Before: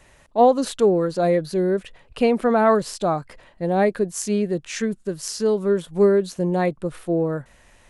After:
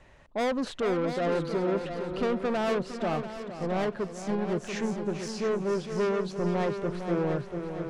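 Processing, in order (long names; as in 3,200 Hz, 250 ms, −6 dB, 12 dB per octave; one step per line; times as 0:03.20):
low-pass filter 5,500 Hz 12 dB per octave
high-shelf EQ 2,300 Hz −6.5 dB
soft clipping −23.5 dBFS, distortion −7 dB
echo machine with several playback heads 229 ms, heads second and third, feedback 47%, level −8.5 dB
0:02.34–0:04.49: expander for the loud parts 1.5 to 1, over −32 dBFS
level −1.5 dB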